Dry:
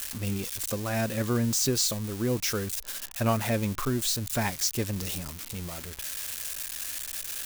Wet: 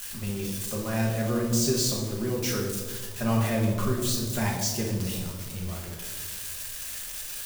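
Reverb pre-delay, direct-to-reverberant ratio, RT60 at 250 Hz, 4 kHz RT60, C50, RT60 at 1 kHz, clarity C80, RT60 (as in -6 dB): 5 ms, -3.0 dB, 1.6 s, 0.80 s, 3.0 dB, 1.2 s, 5.5 dB, 1.4 s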